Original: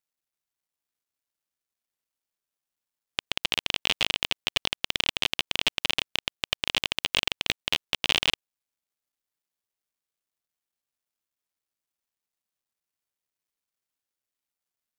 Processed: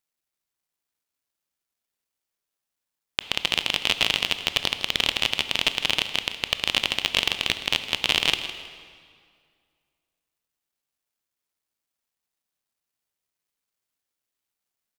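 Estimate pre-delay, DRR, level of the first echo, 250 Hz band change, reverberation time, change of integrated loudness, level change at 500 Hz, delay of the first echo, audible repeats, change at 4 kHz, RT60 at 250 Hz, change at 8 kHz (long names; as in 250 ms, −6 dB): 19 ms, 8.5 dB, −13.5 dB, +3.5 dB, 2.1 s, +3.5 dB, +3.5 dB, 159 ms, 2, +3.5 dB, 2.2 s, +3.5 dB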